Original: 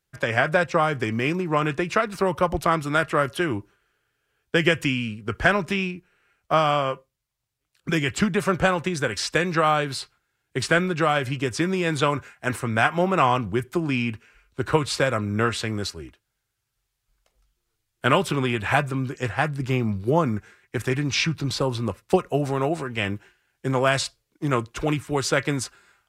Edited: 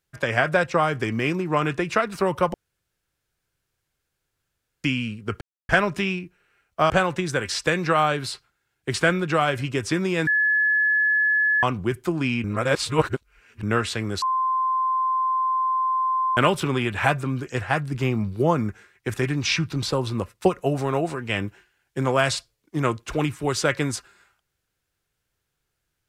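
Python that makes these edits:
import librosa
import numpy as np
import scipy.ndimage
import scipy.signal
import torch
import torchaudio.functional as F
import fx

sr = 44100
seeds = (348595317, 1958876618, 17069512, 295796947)

y = fx.edit(x, sr, fx.room_tone_fill(start_s=2.54, length_s=2.3),
    fx.insert_silence(at_s=5.41, length_s=0.28),
    fx.cut(start_s=6.62, length_s=1.96),
    fx.bleep(start_s=11.95, length_s=1.36, hz=1710.0, db=-17.0),
    fx.reverse_span(start_s=14.12, length_s=1.19),
    fx.bleep(start_s=15.9, length_s=2.15, hz=1040.0, db=-19.5), tone=tone)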